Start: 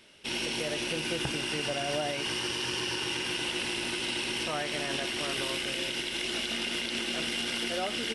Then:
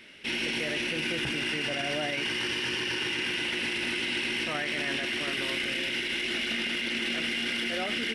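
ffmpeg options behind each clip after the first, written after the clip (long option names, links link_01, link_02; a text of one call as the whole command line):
ffmpeg -i in.wav -af "equalizer=frequency=250:width_type=o:width=1:gain=6,equalizer=frequency=1000:width_type=o:width=1:gain=-3,equalizer=frequency=2000:width_type=o:width=1:gain=11,equalizer=frequency=8000:width_type=o:width=1:gain=-4,alimiter=limit=-23.5dB:level=0:latency=1:release=16,volume=1.5dB" out.wav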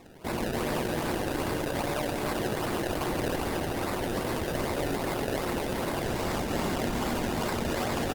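ffmpeg -i in.wav -af "acrusher=samples=28:mix=1:aa=0.000001:lfo=1:lforange=28:lforate=2.5,aecho=1:1:287:0.631" -ar 48000 -c:a libopus -b:a 48k out.opus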